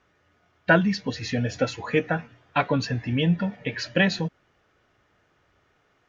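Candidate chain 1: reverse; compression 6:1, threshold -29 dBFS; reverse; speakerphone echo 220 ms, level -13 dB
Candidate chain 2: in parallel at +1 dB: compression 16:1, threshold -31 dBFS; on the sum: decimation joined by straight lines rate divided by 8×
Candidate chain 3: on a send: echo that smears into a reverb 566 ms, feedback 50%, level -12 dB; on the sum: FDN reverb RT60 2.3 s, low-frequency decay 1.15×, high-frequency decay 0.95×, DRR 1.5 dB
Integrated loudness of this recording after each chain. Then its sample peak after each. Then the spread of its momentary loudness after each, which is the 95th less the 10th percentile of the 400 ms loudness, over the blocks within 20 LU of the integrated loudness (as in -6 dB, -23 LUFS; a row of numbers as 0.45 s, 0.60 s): -33.5 LUFS, -24.0 LUFS, -22.0 LUFS; -18.0 dBFS, -3.5 dBFS, -4.0 dBFS; 5 LU, 9 LU, 17 LU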